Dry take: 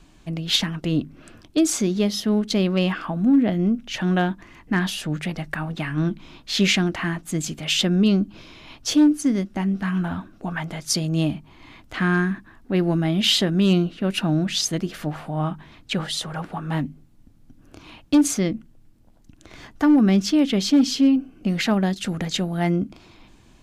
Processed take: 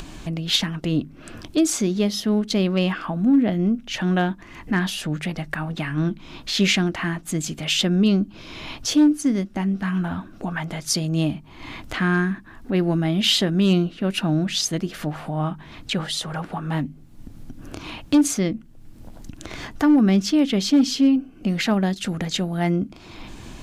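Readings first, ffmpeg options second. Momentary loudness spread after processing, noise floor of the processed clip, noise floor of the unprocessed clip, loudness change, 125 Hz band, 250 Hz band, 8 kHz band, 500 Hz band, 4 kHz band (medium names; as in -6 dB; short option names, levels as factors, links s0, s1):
16 LU, -45 dBFS, -52 dBFS, 0.0 dB, 0.0 dB, 0.0 dB, 0.0 dB, 0.0 dB, 0.0 dB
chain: -af "acompressor=mode=upward:threshold=0.0631:ratio=2.5"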